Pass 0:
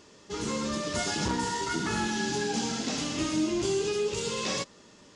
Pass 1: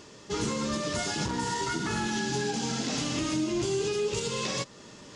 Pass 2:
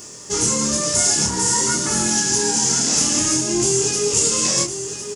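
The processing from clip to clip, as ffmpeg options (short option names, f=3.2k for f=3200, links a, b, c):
-af "areverse,acompressor=mode=upward:threshold=-48dB:ratio=2.5,areverse,alimiter=level_in=1.5dB:limit=-24dB:level=0:latency=1:release=229,volume=-1.5dB,equalizer=f=130:w=5.2:g=7,volume=4.5dB"
-af "aexciter=amount=9.6:drive=2:freq=5.5k,flanger=delay=22.5:depth=6.4:speed=0.53,aecho=1:1:1056:0.335,volume=8.5dB"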